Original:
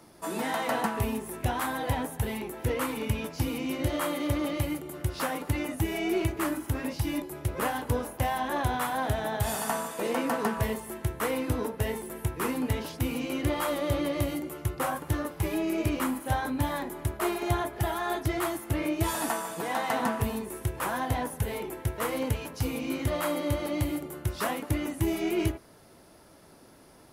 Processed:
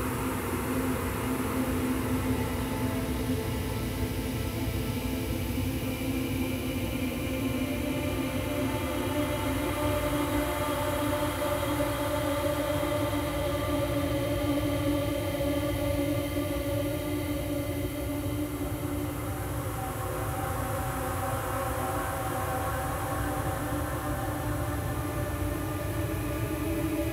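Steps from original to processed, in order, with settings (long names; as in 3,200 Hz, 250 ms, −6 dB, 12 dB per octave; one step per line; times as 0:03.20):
extreme stretch with random phases 8.9×, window 1.00 s, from 0:12.40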